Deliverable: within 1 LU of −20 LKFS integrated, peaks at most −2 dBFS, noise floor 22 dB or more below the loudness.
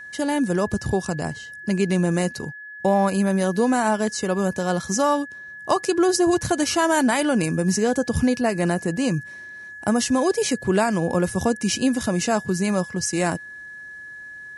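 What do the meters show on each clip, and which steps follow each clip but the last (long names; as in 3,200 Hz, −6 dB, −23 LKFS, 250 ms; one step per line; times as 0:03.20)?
interfering tone 1,700 Hz; level of the tone −36 dBFS; integrated loudness −22.0 LKFS; sample peak −8.5 dBFS; target loudness −20.0 LKFS
→ notch filter 1,700 Hz, Q 30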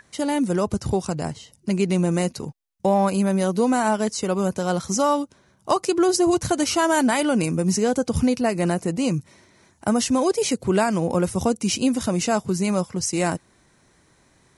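interfering tone none found; integrated loudness −22.0 LKFS; sample peak −8.0 dBFS; target loudness −20.0 LKFS
→ level +2 dB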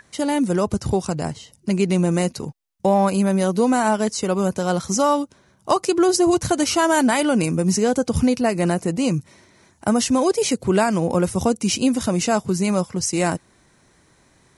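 integrated loudness −20.0 LKFS; sample peak −6.0 dBFS; background noise floor −58 dBFS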